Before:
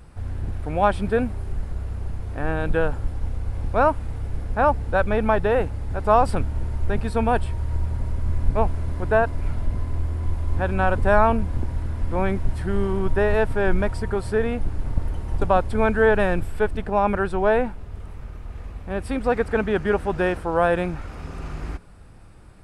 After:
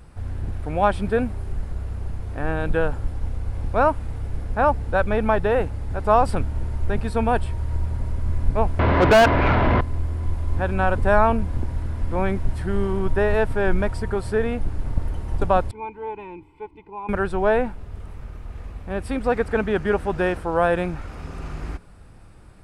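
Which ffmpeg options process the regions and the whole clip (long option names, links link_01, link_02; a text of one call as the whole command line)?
ffmpeg -i in.wav -filter_complex "[0:a]asettb=1/sr,asplit=3[link_01][link_02][link_03];[link_01]atrim=end=8.794[link_04];[link_02]atrim=start=8.79:end=9.81,asetpts=PTS-STARTPTS,afade=type=in:duration=0.004:curve=qsin,afade=type=out:start_time=1.016:duration=0.004:curve=qsin,lowpass=frequency=3300:width=0.5412,lowpass=frequency=3300:width=1.3066,asplit=2[link_05][link_06];[link_06]highpass=frequency=720:poles=1,volume=34dB,asoftclip=type=tanh:threshold=-6dB[link_07];[link_05][link_07]amix=inputs=2:normalize=0,lowpass=frequency=2600:poles=1,volume=-6dB[link_08];[link_03]atrim=start=9.806[link_09];[link_04][link_08]acrossfade=duration=0.004:curve1=hsin:curve2=qsin[link_10];[link_10][link_09]acrossfade=duration=0.004:curve1=qsin:curve2=hsin,asettb=1/sr,asplit=3[link_11][link_12][link_13];[link_11]atrim=end=15.714[link_14];[link_12]atrim=start=15.71:end=17.09,asetpts=PTS-STARTPTS,afade=type=in:duration=0.004:curve=qsin,afade=type=out:start_time=1.376:duration=0.004:curve=qsin,asplit=3[link_15][link_16][link_17];[link_15]bandpass=frequency=300:width_type=q:width=8,volume=0dB[link_18];[link_16]bandpass=frequency=870:width_type=q:width=8,volume=-6dB[link_19];[link_17]bandpass=frequency=2240:width_type=q:width=8,volume=-9dB[link_20];[link_18][link_19][link_20]amix=inputs=3:normalize=0,aecho=1:1:2:0.81,atrim=end_sample=60858[link_21];[link_13]atrim=start=17.086[link_22];[link_14][link_21]acrossfade=duration=0.004:curve1=hsin:curve2=qsin[link_23];[link_23][link_22]acrossfade=duration=0.004:curve1=qsin:curve2=hsin" out.wav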